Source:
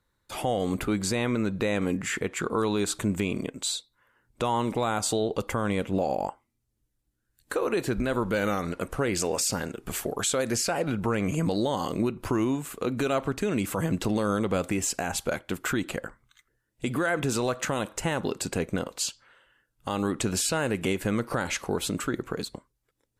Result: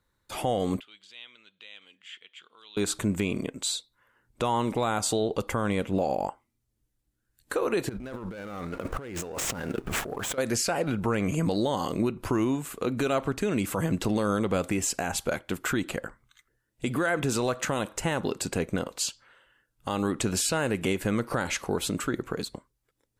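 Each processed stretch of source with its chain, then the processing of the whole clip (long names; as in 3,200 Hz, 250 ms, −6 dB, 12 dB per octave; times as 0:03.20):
0:00.80–0:02.77: de-essing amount 60% + resonant band-pass 3,200 Hz, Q 7.9
0:07.89–0:10.38: running median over 9 samples + leveller curve on the samples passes 1 + compressor whose output falls as the input rises −35 dBFS
whole clip: no processing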